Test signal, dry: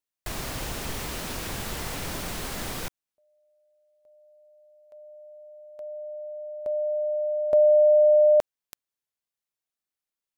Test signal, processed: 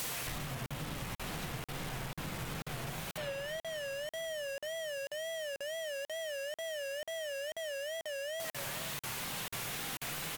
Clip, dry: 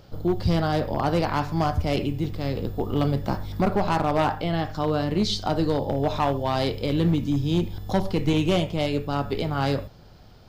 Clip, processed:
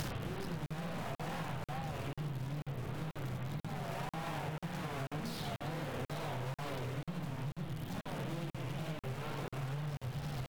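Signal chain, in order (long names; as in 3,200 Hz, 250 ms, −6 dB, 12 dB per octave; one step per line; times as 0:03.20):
sign of each sample alone
brickwall limiter −37 dBFS
parametric band 140 Hz +15 dB 0.46 octaves
on a send: repeating echo 515 ms, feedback 47%, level −18.5 dB
on the sum: spring reverb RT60 1.7 s, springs 47/51 ms, chirp 65 ms, DRR −6 dB
downward compressor 10 to 1, threshold −39 dBFS
low-shelf EQ 330 Hz −3 dB
tape wow and flutter 150 cents
regular buffer underruns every 0.49 s, samples 2,048, zero, from 0:00.66
level +4 dB
AAC 96 kbit/s 44,100 Hz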